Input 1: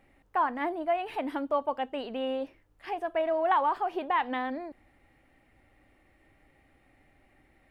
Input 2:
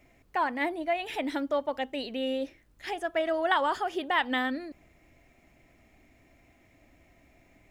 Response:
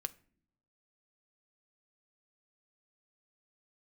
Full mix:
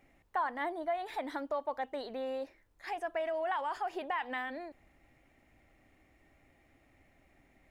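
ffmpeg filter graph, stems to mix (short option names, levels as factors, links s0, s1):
-filter_complex "[0:a]acompressor=threshold=0.0398:ratio=6,volume=0.596[s0];[1:a]alimiter=limit=0.0708:level=0:latency=1:release=10,volume=-1,volume=0.335[s1];[s0][s1]amix=inputs=2:normalize=0"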